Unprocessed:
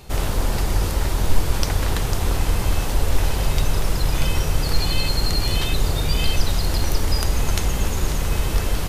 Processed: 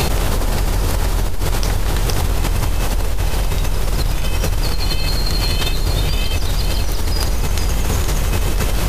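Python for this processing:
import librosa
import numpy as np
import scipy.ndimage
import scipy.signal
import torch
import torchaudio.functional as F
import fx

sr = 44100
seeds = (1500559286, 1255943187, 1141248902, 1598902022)

y = x + 10.0 ** (-7.0 / 20.0) * np.pad(x, (int(465 * sr / 1000.0), 0))[:len(x)]
y = fx.env_flatten(y, sr, amount_pct=100)
y = y * librosa.db_to_amplitude(-8.5)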